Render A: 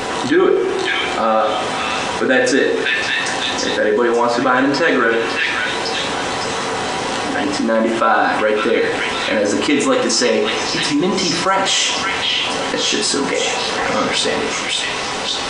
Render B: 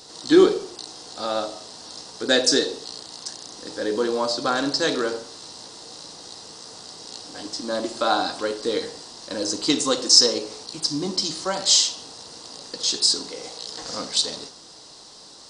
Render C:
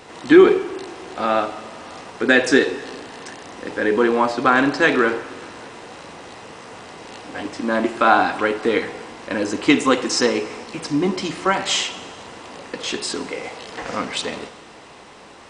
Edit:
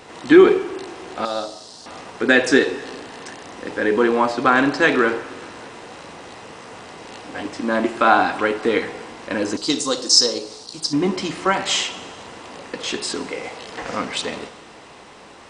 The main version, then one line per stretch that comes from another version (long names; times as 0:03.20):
C
0:01.25–0:01.86: punch in from B
0:09.57–0:10.93: punch in from B
not used: A